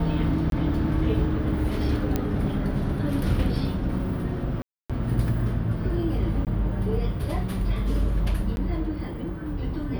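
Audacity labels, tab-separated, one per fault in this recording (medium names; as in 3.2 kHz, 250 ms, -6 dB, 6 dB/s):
0.500000	0.520000	dropout 22 ms
2.160000	2.160000	pop -11 dBFS
4.620000	4.900000	dropout 276 ms
6.450000	6.470000	dropout 18 ms
8.560000	8.570000	dropout 11 ms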